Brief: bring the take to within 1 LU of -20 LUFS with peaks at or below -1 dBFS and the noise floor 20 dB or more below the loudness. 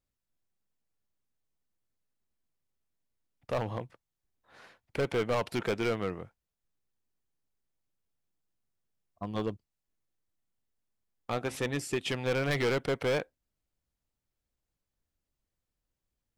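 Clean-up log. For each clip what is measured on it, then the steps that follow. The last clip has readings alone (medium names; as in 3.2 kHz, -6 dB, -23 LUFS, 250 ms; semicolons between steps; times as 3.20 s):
clipped samples 1.4%; clipping level -24.5 dBFS; loudness -32.5 LUFS; peak level -24.5 dBFS; loudness target -20.0 LUFS
-> clip repair -24.5 dBFS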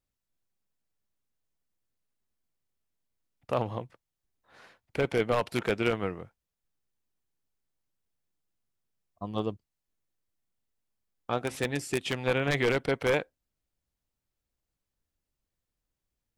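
clipped samples 0.0%; loudness -30.0 LUFS; peak level -15.5 dBFS; loudness target -20.0 LUFS
-> trim +10 dB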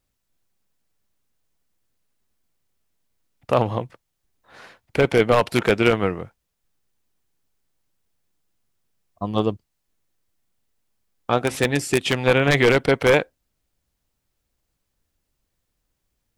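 loudness -20.0 LUFS; peak level -5.5 dBFS; noise floor -77 dBFS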